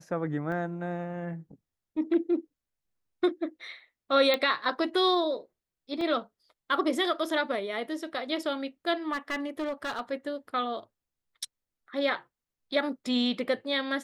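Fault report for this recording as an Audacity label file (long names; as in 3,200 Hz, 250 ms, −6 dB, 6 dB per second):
0.520000	0.520000	drop-out 2.5 ms
4.340000	4.340000	click −13 dBFS
6.010000	6.010000	drop-out 2.6 ms
9.120000	10.010000	clipping −27.5 dBFS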